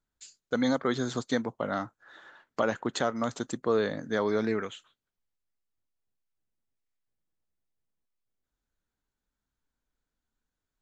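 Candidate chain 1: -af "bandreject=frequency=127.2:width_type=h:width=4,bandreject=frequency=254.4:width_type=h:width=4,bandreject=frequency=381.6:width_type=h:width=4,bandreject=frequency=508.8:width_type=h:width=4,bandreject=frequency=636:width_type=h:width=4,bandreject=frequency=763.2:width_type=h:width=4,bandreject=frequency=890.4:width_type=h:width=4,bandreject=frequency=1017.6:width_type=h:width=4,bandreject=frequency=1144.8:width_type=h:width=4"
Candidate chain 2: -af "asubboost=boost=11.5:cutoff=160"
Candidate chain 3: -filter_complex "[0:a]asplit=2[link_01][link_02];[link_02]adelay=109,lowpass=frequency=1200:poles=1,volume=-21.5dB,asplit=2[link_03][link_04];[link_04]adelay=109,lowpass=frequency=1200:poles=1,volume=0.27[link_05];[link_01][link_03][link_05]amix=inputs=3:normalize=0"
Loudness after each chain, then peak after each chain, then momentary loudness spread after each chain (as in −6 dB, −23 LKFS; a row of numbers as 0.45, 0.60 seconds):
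−30.5, −27.5, −30.5 LKFS; −14.0, −12.0, −14.0 dBFS; 7, 9, 7 LU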